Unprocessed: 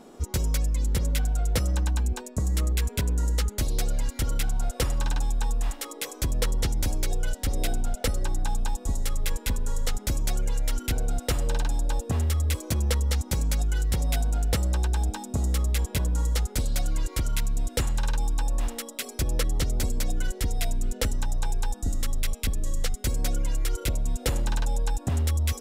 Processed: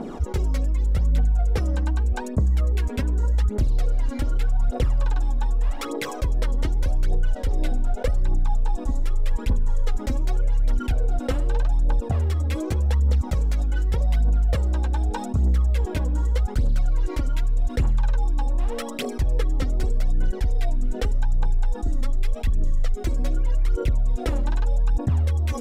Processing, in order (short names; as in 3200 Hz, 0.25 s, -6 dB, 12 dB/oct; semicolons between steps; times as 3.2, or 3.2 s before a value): LPF 1300 Hz 6 dB/oct; phaser 0.84 Hz, delay 3.9 ms, feedback 59%; fast leveller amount 50%; gain -2 dB